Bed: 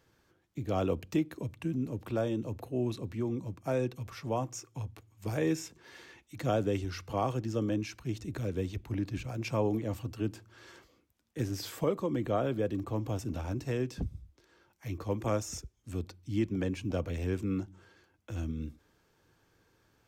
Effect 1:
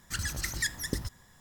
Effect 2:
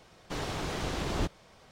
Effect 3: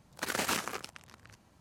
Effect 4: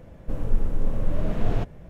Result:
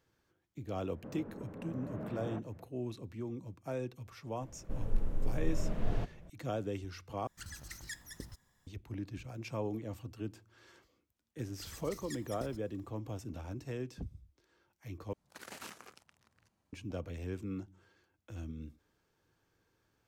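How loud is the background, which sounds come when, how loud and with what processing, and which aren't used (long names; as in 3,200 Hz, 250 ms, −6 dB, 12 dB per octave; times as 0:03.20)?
bed −7.5 dB
0:00.75: mix in 4 −10 dB + Chebyshev band-pass filter 170–1,600 Hz
0:04.41: mix in 4 −9.5 dB
0:07.27: overwrite with 1 −14 dB
0:11.48: mix in 1 −15.5 dB + parametric band 1,600 Hz −14 dB 0.22 octaves
0:15.13: overwrite with 3 −16 dB
not used: 2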